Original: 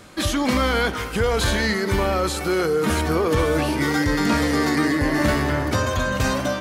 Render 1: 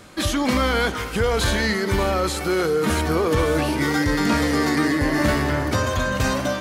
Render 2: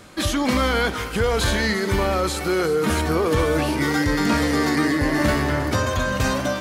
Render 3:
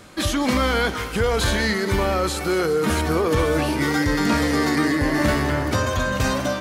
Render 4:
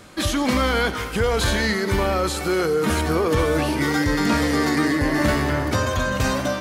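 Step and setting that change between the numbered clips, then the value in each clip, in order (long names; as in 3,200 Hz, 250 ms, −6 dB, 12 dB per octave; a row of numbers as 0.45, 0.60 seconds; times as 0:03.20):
delay with a high-pass on its return, delay time: 592, 356, 203, 91 milliseconds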